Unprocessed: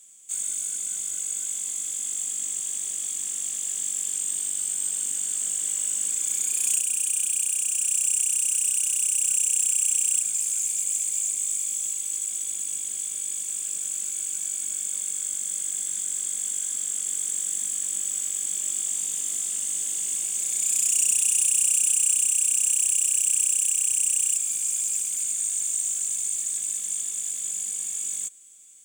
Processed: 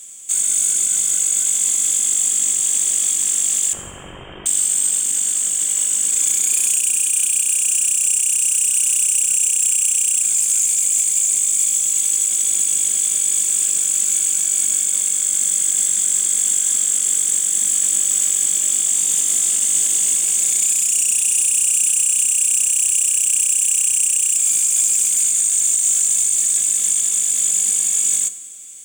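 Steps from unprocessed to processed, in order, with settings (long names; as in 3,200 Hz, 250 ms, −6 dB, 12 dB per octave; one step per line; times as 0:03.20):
0:03.73–0:04.46: voice inversion scrambler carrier 3,400 Hz
dense smooth reverb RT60 1.1 s, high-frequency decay 0.85×, DRR 13 dB
boost into a limiter +19.5 dB
level −6 dB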